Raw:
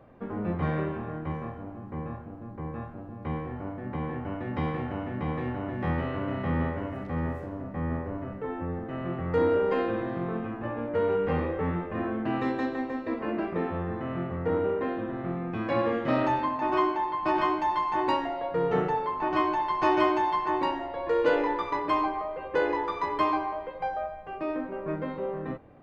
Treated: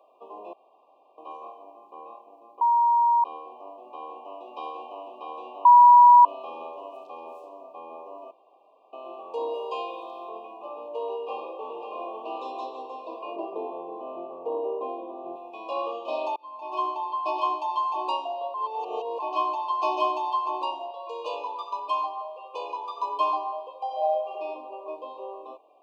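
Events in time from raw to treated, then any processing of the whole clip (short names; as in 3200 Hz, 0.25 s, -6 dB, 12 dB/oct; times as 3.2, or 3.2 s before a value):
0.53–1.18 room tone
2.61–3.24 bleep 944 Hz -17 dBFS
5.65–6.25 bleep 969 Hz -10 dBFS
8.31–8.93 room tone
9.54–10.29 tilt +2 dB/oct
11.15–12.13 echo throw 0.54 s, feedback 60%, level -6 dB
13.36–15.36 tilt -4 dB/oct
16.36–16.96 fade in
18.54–19.19 reverse
20.91–22.98 HPF 790 Hz 6 dB/oct
23.86–24.3 reverb throw, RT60 1.7 s, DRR -6.5 dB
whole clip: HPF 520 Hz 24 dB/oct; FFT band-reject 1200–2400 Hz; comb 2.9 ms, depth 31%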